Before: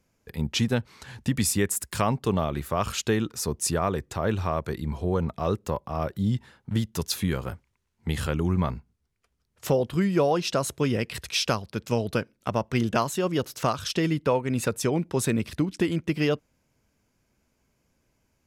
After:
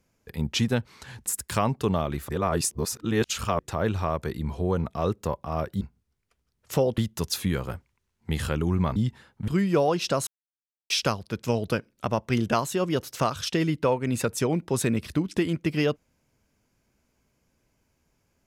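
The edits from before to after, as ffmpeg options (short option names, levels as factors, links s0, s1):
-filter_complex "[0:a]asplit=10[s0][s1][s2][s3][s4][s5][s6][s7][s8][s9];[s0]atrim=end=1.262[s10];[s1]atrim=start=1.688:end=2.722[s11];[s2]atrim=start=2.718:end=4.022,asetpts=PTS-STARTPTS,areverse[s12];[s3]atrim=start=4.018:end=6.242[s13];[s4]atrim=start=8.738:end=9.912[s14];[s5]atrim=start=6.758:end=8.742[s15];[s6]atrim=start=6.238:end=6.762[s16];[s7]atrim=start=9.908:end=10.7,asetpts=PTS-STARTPTS,afade=t=out:st=0.788:d=0.004:c=hsin[s17];[s8]atrim=start=10.7:end=11.33,asetpts=PTS-STARTPTS,volume=0[s18];[s9]atrim=start=11.33,asetpts=PTS-STARTPTS,afade=t=in:d=0.004:c=hsin[s19];[s10][s11]acrossfade=d=0.004:c1=hsin:c2=hsin[s20];[s20][s12]acrossfade=d=0.004:c1=hsin:c2=hsin[s21];[s21][s13]acrossfade=d=0.004:c1=hsin:c2=hsin[s22];[s22][s14]acrossfade=d=0.004:c1=hsin:c2=hsin[s23];[s23][s15]acrossfade=d=0.004:c1=hsin:c2=hsin[s24];[s24][s16]acrossfade=d=0.004:c1=hsin:c2=hsin[s25];[s17][s18][s19]concat=n=3:v=0:a=1[s26];[s25][s26]acrossfade=d=0.004:c1=hsin:c2=hsin"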